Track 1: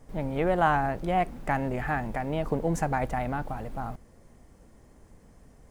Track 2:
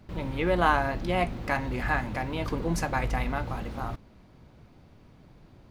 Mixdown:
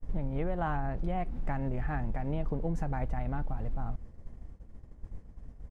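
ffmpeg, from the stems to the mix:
-filter_complex "[0:a]aemphasis=mode=reproduction:type=bsi,volume=1dB[a];[1:a]adelay=4.4,volume=-18dB[b];[a][b]amix=inputs=2:normalize=0,agate=range=-33dB:threshold=-32dB:ratio=3:detection=peak,acompressor=threshold=-29dB:ratio=5"

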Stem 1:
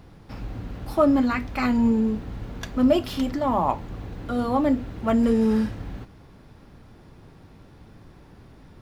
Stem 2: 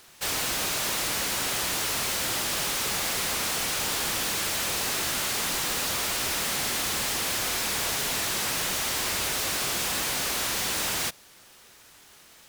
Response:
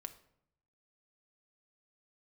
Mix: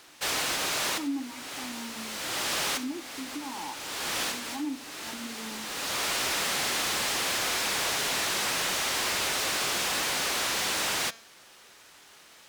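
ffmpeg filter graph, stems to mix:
-filter_complex "[0:a]asplit=3[a][b][c];[a]bandpass=f=300:t=q:w=8,volume=0dB[d];[b]bandpass=f=870:t=q:w=8,volume=-6dB[e];[c]bandpass=f=2.24k:t=q:w=8,volume=-9dB[f];[d][e][f]amix=inputs=3:normalize=0,volume=-4.5dB,asplit=2[g][h];[1:a]highshelf=f=9.6k:g=-10.5,volume=2dB[i];[h]apad=whole_len=550695[j];[i][j]sidechaincompress=threshold=-46dB:ratio=6:attack=16:release=529[k];[g][k]amix=inputs=2:normalize=0,lowshelf=f=170:g=-11.5,bandreject=f=227.3:t=h:w=4,bandreject=f=454.6:t=h:w=4,bandreject=f=681.9:t=h:w=4,bandreject=f=909.2:t=h:w=4,bandreject=f=1.1365k:t=h:w=4,bandreject=f=1.3638k:t=h:w=4,bandreject=f=1.5911k:t=h:w=4,bandreject=f=1.8184k:t=h:w=4,bandreject=f=2.0457k:t=h:w=4,bandreject=f=2.273k:t=h:w=4,bandreject=f=2.5003k:t=h:w=4,bandreject=f=2.7276k:t=h:w=4,bandreject=f=2.9549k:t=h:w=4,bandreject=f=3.1822k:t=h:w=4,bandreject=f=3.4095k:t=h:w=4,bandreject=f=3.6368k:t=h:w=4,bandreject=f=3.8641k:t=h:w=4,bandreject=f=4.0914k:t=h:w=4,bandreject=f=4.3187k:t=h:w=4,bandreject=f=4.546k:t=h:w=4,bandreject=f=4.7733k:t=h:w=4,bandreject=f=5.0006k:t=h:w=4,bandreject=f=5.2279k:t=h:w=4,bandreject=f=5.4552k:t=h:w=4,bandreject=f=5.6825k:t=h:w=4,bandreject=f=5.9098k:t=h:w=4,bandreject=f=6.1371k:t=h:w=4,bandreject=f=6.3644k:t=h:w=4,bandreject=f=6.5917k:t=h:w=4,bandreject=f=6.819k:t=h:w=4,bandreject=f=7.0463k:t=h:w=4,bandreject=f=7.2736k:t=h:w=4"

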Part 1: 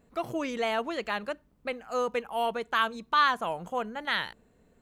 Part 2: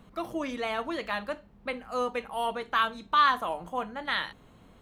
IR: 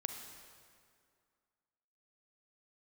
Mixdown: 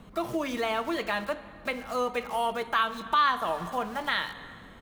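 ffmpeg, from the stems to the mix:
-filter_complex "[0:a]acompressor=threshold=-29dB:ratio=4,acrusher=bits=6:mix=0:aa=0.000001,volume=-3dB[a];[1:a]adelay=0.7,volume=1.5dB,asplit=3[b][c][d];[c]volume=-5.5dB[e];[d]apad=whole_len=212361[f];[a][f]sidechaincompress=threshold=-29dB:ratio=8:attack=16:release=113[g];[2:a]atrim=start_sample=2205[h];[e][h]afir=irnorm=-1:irlink=0[i];[g][b][i]amix=inputs=3:normalize=0,acompressor=threshold=-30dB:ratio=1.5"

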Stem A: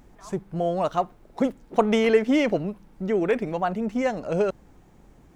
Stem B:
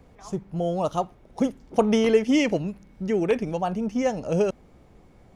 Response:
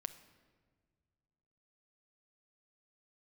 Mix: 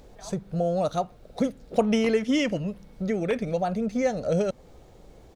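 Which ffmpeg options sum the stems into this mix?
-filter_complex "[0:a]acompressor=threshold=-28dB:ratio=6,equalizer=f=125:t=o:w=1:g=-3,equalizer=f=250:t=o:w=1:g=-11,equalizer=f=500:t=o:w=1:g=11,equalizer=f=1k:t=o:w=1:g=-4,equalizer=f=2k:t=o:w=1:g=-6,equalizer=f=4k:t=o:w=1:g=8,volume=1.5dB[a];[1:a]adelay=0.3,volume=-2.5dB[b];[a][b]amix=inputs=2:normalize=0"

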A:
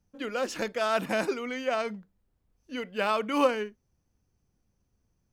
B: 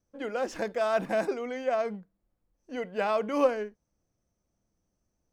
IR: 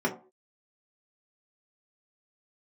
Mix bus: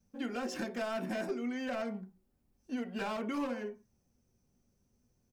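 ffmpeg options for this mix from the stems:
-filter_complex "[0:a]volume=-4.5dB,asplit=2[a][b];[b]volume=-10.5dB[c];[1:a]highpass=f=300:p=1,highshelf=f=7.3k:g=7.5,asoftclip=type=hard:threshold=-27.5dB,volume=-1,adelay=2.8,volume=-0.5dB,asplit=3[d][e][f];[e]volume=-20dB[g];[f]apad=whole_len=234786[h];[a][h]sidechaincompress=threshold=-35dB:ratio=8:attack=16:release=390[i];[2:a]atrim=start_sample=2205[j];[c][g]amix=inputs=2:normalize=0[k];[k][j]afir=irnorm=-1:irlink=0[l];[i][d][l]amix=inputs=3:normalize=0,acompressor=threshold=-34dB:ratio=4"

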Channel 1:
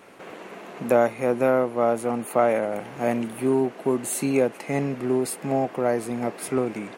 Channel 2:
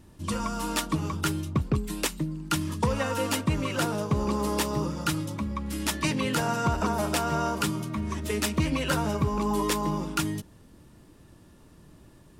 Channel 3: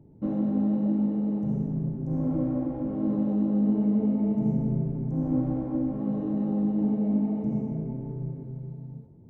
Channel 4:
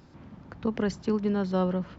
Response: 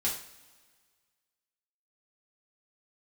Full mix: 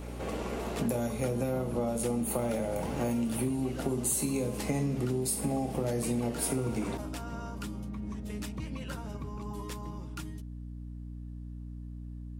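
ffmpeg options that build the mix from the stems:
-filter_complex "[0:a]equalizer=f=1.7k:w=0.73:g=-9.5,acrossover=split=150|3000[a][b][c];[b]acompressor=threshold=-34dB:ratio=4[d];[a][d][c]amix=inputs=3:normalize=0,volume=1dB,asplit=2[e][f];[f]volume=-4dB[g];[1:a]volume=-15.5dB[h];[2:a]adelay=1250,volume=-17.5dB[i];[3:a]volume=-14.5dB[j];[4:a]atrim=start_sample=2205[k];[g][k]afir=irnorm=-1:irlink=0[l];[e][h][i][j][l]amix=inputs=5:normalize=0,aeval=exprs='val(0)+0.01*(sin(2*PI*60*n/s)+sin(2*PI*2*60*n/s)/2+sin(2*PI*3*60*n/s)/3+sin(2*PI*4*60*n/s)/4+sin(2*PI*5*60*n/s)/5)':c=same,acompressor=threshold=-27dB:ratio=6"

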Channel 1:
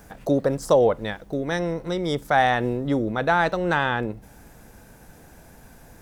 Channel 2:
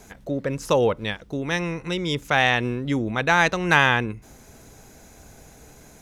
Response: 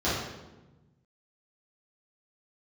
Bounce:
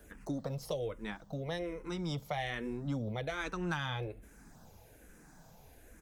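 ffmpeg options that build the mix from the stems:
-filter_complex "[0:a]asplit=2[a][b];[b]afreqshift=-1.2[c];[a][c]amix=inputs=2:normalize=1,volume=-3dB[d];[1:a]adelay=0.9,volume=-15.5dB[e];[d][e]amix=inputs=2:normalize=0,acrossover=split=130|3000[f][g][h];[g]acompressor=threshold=-31dB:ratio=6[i];[f][i][h]amix=inputs=3:normalize=0,flanger=delay=0.2:depth=6.5:regen=-52:speed=0.65:shape=sinusoidal"

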